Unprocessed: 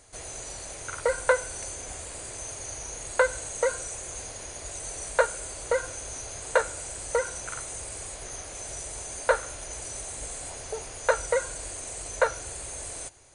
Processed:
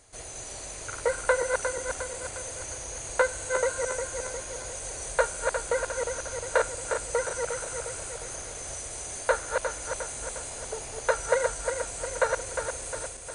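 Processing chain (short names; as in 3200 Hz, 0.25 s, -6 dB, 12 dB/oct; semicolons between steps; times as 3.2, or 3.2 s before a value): regenerating reverse delay 0.178 s, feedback 72%, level -4.5 dB; gain -2 dB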